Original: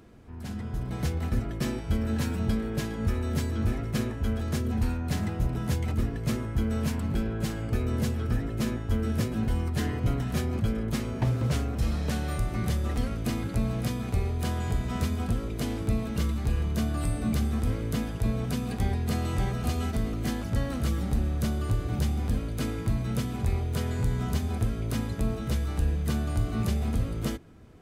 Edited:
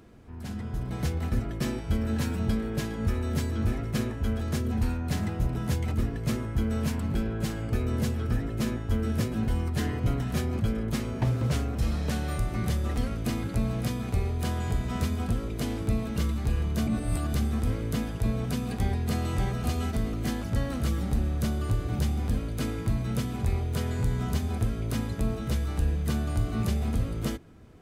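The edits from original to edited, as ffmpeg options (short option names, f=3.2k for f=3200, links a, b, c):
-filter_complex "[0:a]asplit=3[a][b][c];[a]atrim=end=16.872[d];[b]atrim=start=16.868:end=17.342,asetpts=PTS-STARTPTS,areverse[e];[c]atrim=start=17.338[f];[d][e]acrossfade=d=0.004:c1=hsin:c2=hsin[g];[g][f]acrossfade=d=0.004:c1=hsin:c2=hsin"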